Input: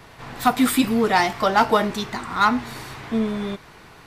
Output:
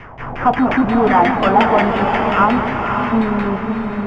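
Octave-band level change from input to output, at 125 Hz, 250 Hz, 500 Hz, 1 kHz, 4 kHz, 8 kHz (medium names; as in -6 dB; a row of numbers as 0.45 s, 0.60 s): +9.0 dB, +6.0 dB, +7.0 dB, +7.0 dB, -1.5 dB, under -15 dB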